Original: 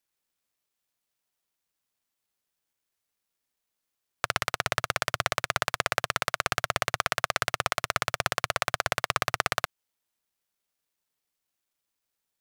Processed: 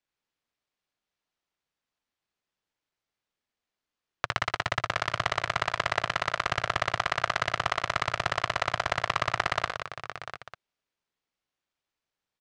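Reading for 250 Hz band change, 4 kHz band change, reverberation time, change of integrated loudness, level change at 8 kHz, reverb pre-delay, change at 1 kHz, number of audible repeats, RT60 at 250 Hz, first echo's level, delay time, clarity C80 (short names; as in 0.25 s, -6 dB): +1.0 dB, -1.0 dB, none, -0.5 dB, -8.0 dB, none, +1.5 dB, 4, none, -8.0 dB, 61 ms, none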